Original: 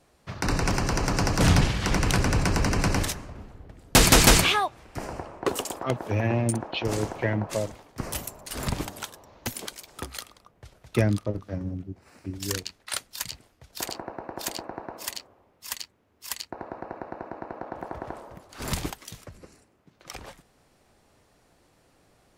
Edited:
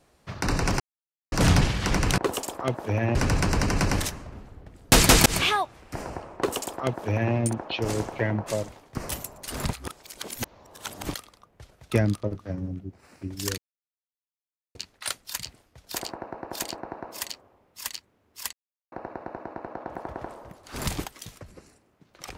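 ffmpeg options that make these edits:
-filter_complex "[0:a]asplit=11[a][b][c][d][e][f][g][h][i][j][k];[a]atrim=end=0.8,asetpts=PTS-STARTPTS,afade=t=out:st=0.796:d=0.004:c=hsin[l];[b]atrim=start=0.8:end=1.32,asetpts=PTS-STARTPTS,volume=0[m];[c]atrim=start=1.32:end=2.182,asetpts=PTS-STARTPTS,afade=t=in:d=0.004:c=hsin[n];[d]atrim=start=5.398:end=6.372[o];[e]atrim=start=2.178:end=4.29,asetpts=PTS-STARTPTS,afade=t=out:st=2.108:d=0.004:c=hsin[p];[f]atrim=start=4.29:end=8.762,asetpts=PTS-STARTPTS,afade=t=in:d=0.28:c=qsin[q];[g]atrim=start=8.758:end=10.172,asetpts=PTS-STARTPTS,areverse[r];[h]atrim=start=10.168:end=12.61,asetpts=PTS-STARTPTS,afade=t=out:st=2.438:d=0.004:c=hsin,apad=pad_dur=1.17[s];[i]atrim=start=12.61:end=16.39,asetpts=PTS-STARTPTS,afade=t=in:d=0.004:c=hsin,afade=t=out:st=3.776:d=0.004:c=hsin[t];[j]atrim=start=16.39:end=16.78,asetpts=PTS-STARTPTS,volume=0[u];[k]atrim=start=16.78,asetpts=PTS-STARTPTS,afade=t=in:d=0.004:c=hsin[v];[l][m][n]concat=n=3:v=0:a=1[w];[w][o]acrossfade=d=0.004:c1=hsin:c2=hsin[x];[p][q]concat=n=2:v=0:a=1[y];[x][y]acrossfade=d=0.004:c1=hsin:c2=hsin[z];[z][r]acrossfade=d=0.004:c1=hsin:c2=hsin[aa];[s][t][u][v]concat=n=4:v=0:a=1[ab];[aa][ab]acrossfade=d=0.004:c1=hsin:c2=hsin"

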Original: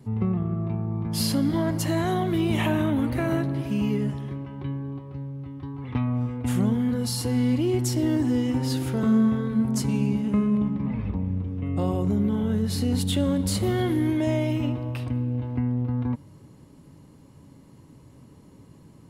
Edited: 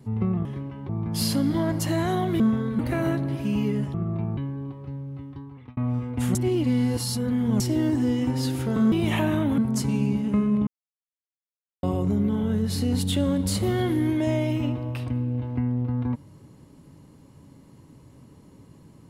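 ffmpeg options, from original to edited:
-filter_complex "[0:a]asplit=14[a][b][c][d][e][f][g][h][i][j][k][l][m][n];[a]atrim=end=0.452[o];[b]atrim=start=4.198:end=4.642[p];[c]atrim=start=0.878:end=2.392[q];[d]atrim=start=9.188:end=9.582[r];[e]atrim=start=3.048:end=4.202[s];[f]atrim=start=0.448:end=0.882[t];[g]atrim=start=4.638:end=6.04,asetpts=PTS-STARTPTS,afade=t=out:st=0.832:d=0.57[u];[h]atrim=start=6.04:end=6.622,asetpts=PTS-STARTPTS,afade=t=in:d=0.004:c=hsin[v];[i]atrim=start=6.618:end=7.872,asetpts=PTS-STARTPTS,areverse[w];[j]atrim=start=7.868:end=9.192[x];[k]atrim=start=2.388:end=3.052[y];[l]atrim=start=9.578:end=10.67,asetpts=PTS-STARTPTS,afade=t=out:st=1.088:d=0.004:c=hsin[z];[m]atrim=start=10.67:end=11.83,asetpts=PTS-STARTPTS,volume=0[aa];[n]atrim=start=11.83,asetpts=PTS-STARTPTS,afade=t=in:d=0.004:c=hsin[ab];[o][p]acrossfade=d=0.004:c1=hsin:c2=hsin[ac];[ac][q]acrossfade=d=0.004:c1=hsin:c2=hsin[ad];[ad][r]acrossfade=d=0.004:c1=hsin:c2=hsin[ae];[ae][s]acrossfade=d=0.004:c1=hsin:c2=hsin[af];[af][t]acrossfade=d=0.004:c1=hsin:c2=hsin[ag];[u][v]concat=n=2:v=0:a=1[ah];[ag][ah]acrossfade=d=0.004:c1=hsin:c2=hsin[ai];[ai][w]acrossfade=d=0.004:c1=hsin:c2=hsin[aj];[aj][x]acrossfade=d=0.004:c1=hsin:c2=hsin[ak];[ak][y]acrossfade=d=0.004:c1=hsin:c2=hsin[al];[z][aa][ab]concat=n=3:v=0:a=1[am];[al][am]acrossfade=d=0.004:c1=hsin:c2=hsin"

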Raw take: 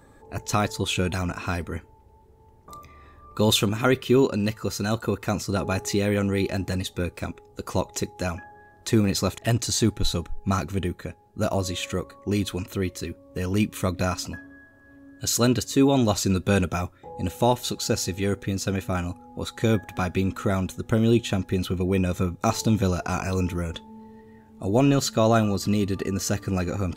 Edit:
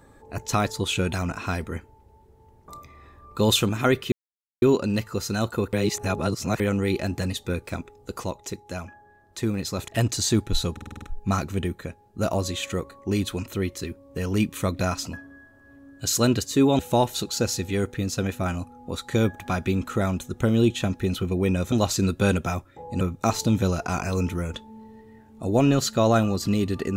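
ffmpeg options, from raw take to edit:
-filter_complex "[0:a]asplit=15[a][b][c][d][e][f][g][h][i][j][k][l][m][n][o];[a]atrim=end=4.12,asetpts=PTS-STARTPTS,afade=t=out:st=4.116:d=0.004:c=hsin,apad=pad_dur=0.5[p];[b]atrim=start=4.12:end=5.232,asetpts=PTS-STARTPTS,afade=t=in:d=0.004:c=hsin[q];[c]atrim=start=5.228:end=6.102,asetpts=PTS-STARTPTS,areverse[r];[d]atrim=start=6.098:end=7.742[s];[e]atrim=start=7.738:end=9.292,asetpts=PTS-STARTPTS,volume=-5.5dB[t];[f]atrim=start=9.288:end=10.272[u];[g]atrim=start=10.218:end=10.272[v];[h]atrim=start=10.218:end=10.272[w];[i]atrim=start=10.218:end=10.272[x];[j]atrim=start=10.218:end=10.272[y];[k]atrim=start=10.218:end=10.272[z];[l]atrim=start=10.218:end=15.992[aa];[m]atrim=start=17.278:end=22.212[ab];[n]atrim=start=15.988:end=17.282[ac];[o]atrim=start=22.208[ad];[p][q]concat=n=2:v=0:a=1[ae];[ae][r]acrossfade=d=0.004:c1=hsin:c2=hsin[af];[af][s]acrossfade=d=0.004:c1=hsin:c2=hsin[ag];[ag][t]acrossfade=d=0.004:c1=hsin:c2=hsin[ah];[ah][u]acrossfade=d=0.004:c1=hsin:c2=hsin[ai];[ai][v]acrossfade=d=0.004:c1=hsin:c2=hsin[aj];[aj][w]acrossfade=d=0.004:c1=hsin:c2=hsin[ak];[ak][x]acrossfade=d=0.004:c1=hsin:c2=hsin[al];[al][y]acrossfade=d=0.004:c1=hsin:c2=hsin[am];[am][z]acrossfade=d=0.004:c1=hsin:c2=hsin[an];[an][aa]acrossfade=d=0.004:c1=hsin:c2=hsin[ao];[ao][ab]acrossfade=d=0.004:c1=hsin:c2=hsin[ap];[ap][ac]acrossfade=d=0.004:c1=hsin:c2=hsin[aq];[aq][ad]acrossfade=d=0.004:c1=hsin:c2=hsin"

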